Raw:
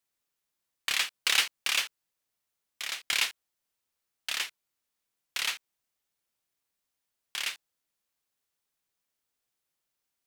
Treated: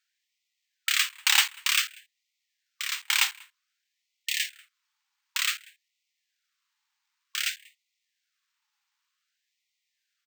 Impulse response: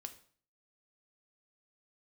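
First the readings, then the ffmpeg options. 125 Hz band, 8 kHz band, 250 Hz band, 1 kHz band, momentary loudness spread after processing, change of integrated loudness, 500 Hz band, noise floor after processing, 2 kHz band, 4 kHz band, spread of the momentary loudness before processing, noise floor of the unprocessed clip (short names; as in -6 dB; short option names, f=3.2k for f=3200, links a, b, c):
n/a, +5.0 dB, under -35 dB, +3.5 dB, 14 LU, +4.0 dB, under -30 dB, -82 dBFS, +3.5 dB, +3.0 dB, 14 LU, -84 dBFS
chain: -filter_complex "[0:a]asplit=2[a][b];[b]adelay=190,highpass=300,lowpass=3.4k,asoftclip=type=hard:threshold=-20.5dB,volume=-23dB[c];[a][c]amix=inputs=2:normalize=0,acrusher=samples=4:mix=1:aa=0.000001,afftfilt=real='re*gte(b*sr/1024,770*pow(1900/770,0.5+0.5*sin(2*PI*0.54*pts/sr)))':imag='im*gte(b*sr/1024,770*pow(1900/770,0.5+0.5*sin(2*PI*0.54*pts/sr)))':win_size=1024:overlap=0.75,volume=4dB"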